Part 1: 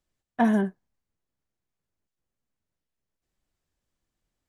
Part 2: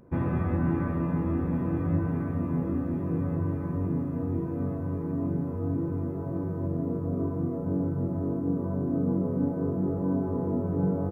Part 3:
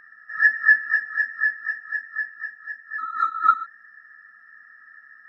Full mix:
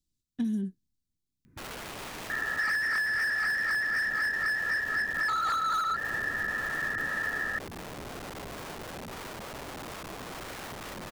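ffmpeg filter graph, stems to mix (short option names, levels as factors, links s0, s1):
-filter_complex "[0:a]firequalizer=gain_entry='entry(280,0);entry(640,-29);entry(3800,1)':delay=0.05:min_phase=1,volume=1[s0];[1:a]firequalizer=gain_entry='entry(210,0);entry(590,-23);entry(1800,5)':delay=0.05:min_phase=1,aeval=exprs='(mod(39.8*val(0)+1,2)-1)/39.8':c=same,adelay=1450,volume=0.631[s1];[2:a]asplit=2[s2][s3];[s3]highpass=f=720:p=1,volume=63.1,asoftclip=type=tanh:threshold=0.631[s4];[s2][s4]amix=inputs=2:normalize=0,lowpass=f=2800:p=1,volume=0.501,adelay=2300,volume=0.335[s5];[s0][s1][s5]amix=inputs=3:normalize=0,acompressor=threshold=0.0447:ratio=10"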